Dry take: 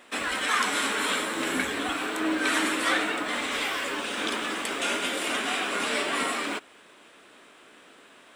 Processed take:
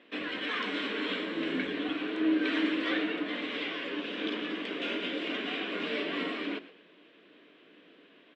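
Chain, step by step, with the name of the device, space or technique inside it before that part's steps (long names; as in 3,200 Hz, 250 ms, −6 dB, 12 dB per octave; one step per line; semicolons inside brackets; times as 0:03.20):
frequency-shifting delay pedal into a guitar cabinet (echo with shifted repeats 117 ms, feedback 31%, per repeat +75 Hz, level −16.5 dB; loudspeaker in its box 100–3,800 Hz, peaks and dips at 180 Hz +8 dB, 300 Hz +9 dB, 450 Hz +5 dB, 840 Hz −9 dB, 1,300 Hz −7 dB, 3,000 Hz +3 dB)
hum removal 46.03 Hz, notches 6
level −6.5 dB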